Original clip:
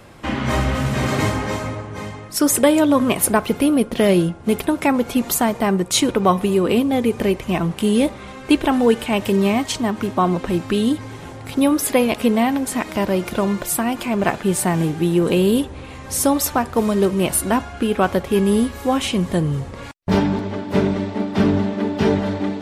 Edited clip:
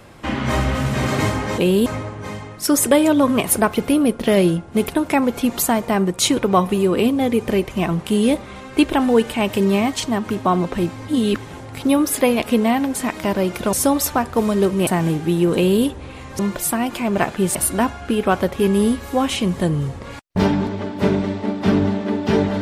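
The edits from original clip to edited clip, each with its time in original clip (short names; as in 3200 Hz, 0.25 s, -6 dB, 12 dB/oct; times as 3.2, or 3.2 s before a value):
10.68–11.1 reverse
13.45–14.61 swap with 16.13–17.27
15.29–15.57 copy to 1.58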